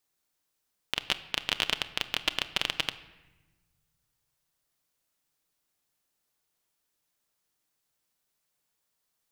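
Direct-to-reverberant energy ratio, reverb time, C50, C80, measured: 11.0 dB, 1.1 s, 15.0 dB, 17.0 dB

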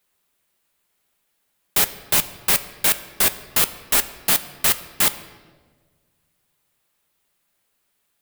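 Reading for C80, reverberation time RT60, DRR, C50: 16.0 dB, 1.5 s, 10.0 dB, 14.5 dB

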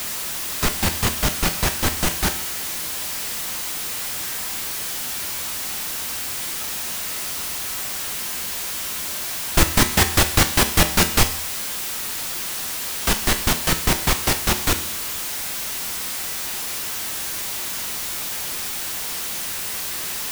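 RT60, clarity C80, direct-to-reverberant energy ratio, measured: 0.60 s, 16.0 dB, 7.0 dB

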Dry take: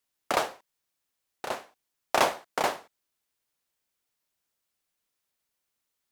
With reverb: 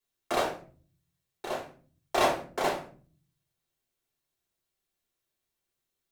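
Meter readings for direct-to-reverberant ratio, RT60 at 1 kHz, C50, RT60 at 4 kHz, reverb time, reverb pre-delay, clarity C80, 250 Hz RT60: -4.5 dB, 0.35 s, 8.0 dB, 0.25 s, 0.40 s, 4 ms, 13.0 dB, 0.80 s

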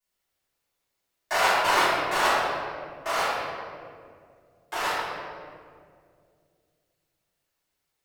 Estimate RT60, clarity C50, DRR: 2.2 s, -3.5 dB, -18.5 dB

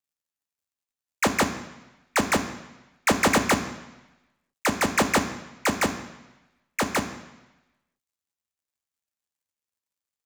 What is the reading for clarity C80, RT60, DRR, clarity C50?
12.5 dB, 1.0 s, 5.5 dB, 10.5 dB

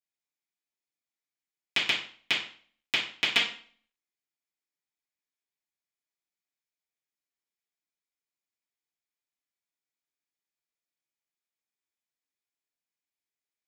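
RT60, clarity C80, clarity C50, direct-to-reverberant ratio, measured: 0.45 s, 12.0 dB, 6.5 dB, -10.5 dB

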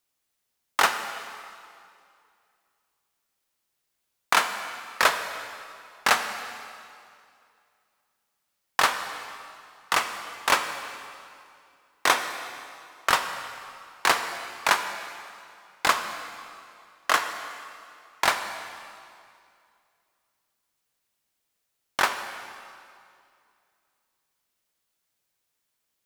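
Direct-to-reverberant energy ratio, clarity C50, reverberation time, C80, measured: 7.5 dB, 8.0 dB, 2.4 s, 9.0 dB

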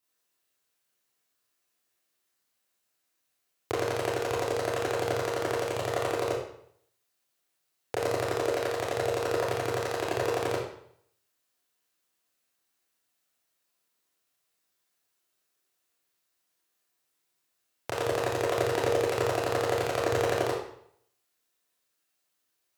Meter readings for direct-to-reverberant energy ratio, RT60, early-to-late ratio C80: -7.0 dB, 0.65 s, 5.0 dB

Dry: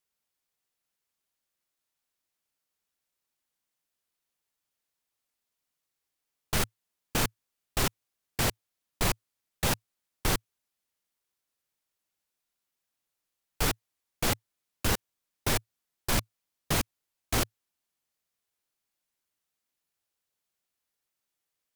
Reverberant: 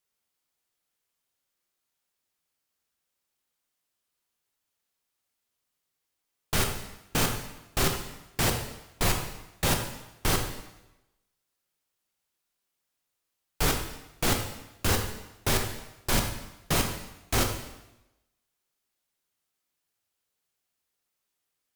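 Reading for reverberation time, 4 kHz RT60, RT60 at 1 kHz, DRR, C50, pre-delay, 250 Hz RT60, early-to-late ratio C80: 0.95 s, 0.90 s, 0.95 s, 3.0 dB, 6.5 dB, 6 ms, 0.95 s, 8.5 dB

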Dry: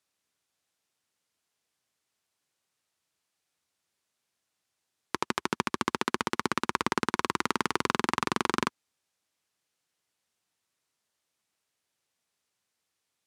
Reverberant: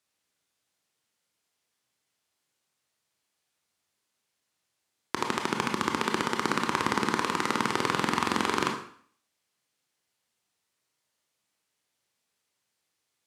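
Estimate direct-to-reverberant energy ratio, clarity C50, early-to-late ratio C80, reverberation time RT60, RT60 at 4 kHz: 2.0 dB, 5.5 dB, 10.0 dB, 0.55 s, 0.55 s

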